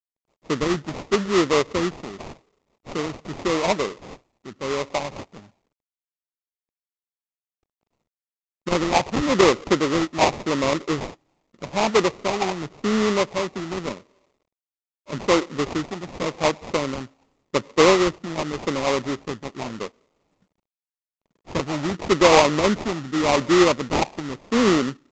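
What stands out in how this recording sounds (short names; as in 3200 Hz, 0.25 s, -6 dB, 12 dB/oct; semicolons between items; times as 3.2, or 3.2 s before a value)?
a quantiser's noise floor 12-bit, dither none; phasing stages 6, 0.86 Hz, lowest notch 460–1700 Hz; aliases and images of a low sample rate 1600 Hz, jitter 20%; µ-law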